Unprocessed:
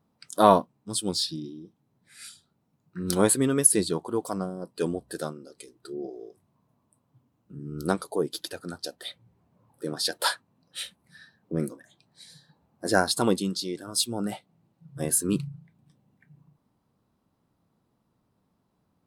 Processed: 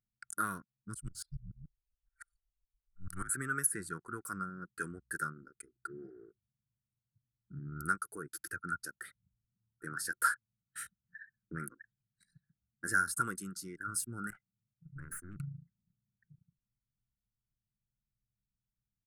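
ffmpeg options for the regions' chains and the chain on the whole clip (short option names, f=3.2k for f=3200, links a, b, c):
-filter_complex "[0:a]asettb=1/sr,asplit=3[a][b][c];[a]atrim=end=0.944[d];[b]atrim=start=0.94:end=3.34,asetpts=PTS-STARTPTS,afade=t=in:d=0.004:c=qsin,afade=t=out:st=2.396:d=0.004:c=qsin,afreqshift=-180,aeval=exprs='val(0)*pow(10,-20*if(lt(mod(-7*n/s,1),2*abs(-7)/1000),1-mod(-7*n/s,1)/(2*abs(-7)/1000),(mod(-7*n/s,1)-2*abs(-7)/1000)/(1-2*abs(-7)/1000))/20)':c=same[e];[c]atrim=start=3.336[f];[d][e]acrossfade=d=0.004:c1=hsin:c2=qsin[g];[g][f]acrossfade=d=0.004:c1=qsin:c2=hsin,asettb=1/sr,asplit=3[h][i][j];[h]atrim=end=14.304[k];[i]atrim=start=14.3:end=15.4,asetpts=PTS-STARTPTS,afade=t=in:d=0.004:c=qsin,afade=t=out:st=1.096:d=0.004:c=qsin,acompressor=threshold=-39dB:ratio=4:attack=3.2:release=140:knee=1:detection=peak,aeval=exprs='clip(val(0),-1,0.00562)':c=same[l];[j]atrim=start=15.396[m];[k][l]acrossfade=d=0.004:c1=hsin:c2=qsin[n];[n][m]acrossfade=d=0.004:c1=qsin:c2=hsin,acrossover=split=540|1100|3600[o][p][q][r];[o]acompressor=threshold=-37dB:ratio=4[s];[p]acompressor=threshold=-30dB:ratio=4[t];[q]acompressor=threshold=-49dB:ratio=4[u];[r]acompressor=threshold=-28dB:ratio=4[v];[s][t][u][v]amix=inputs=4:normalize=0,anlmdn=0.0398,firequalizer=gain_entry='entry(130,0);entry(250,-9);entry(360,-10);entry(610,-28);entry(870,-25);entry(1400,14);entry(2400,-9);entry(3500,-26);entry(5900,-9);entry(9500,-2)':delay=0.05:min_phase=1"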